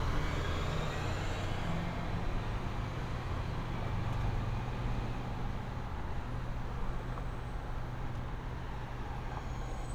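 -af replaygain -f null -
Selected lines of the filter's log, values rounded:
track_gain = +22.6 dB
track_peak = 0.060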